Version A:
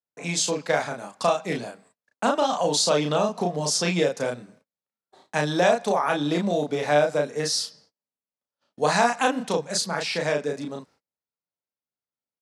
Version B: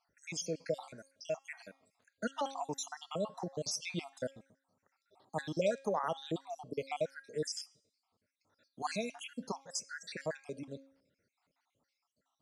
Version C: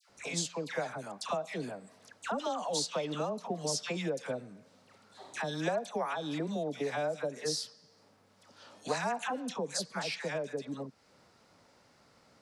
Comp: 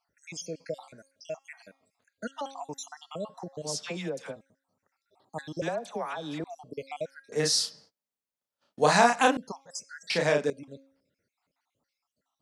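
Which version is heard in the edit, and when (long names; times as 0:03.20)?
B
0:03.65–0:04.33: punch in from C, crossfade 0.10 s
0:05.62–0:06.44: punch in from C
0:07.32–0:09.37: punch in from A
0:10.10–0:10.50: punch in from A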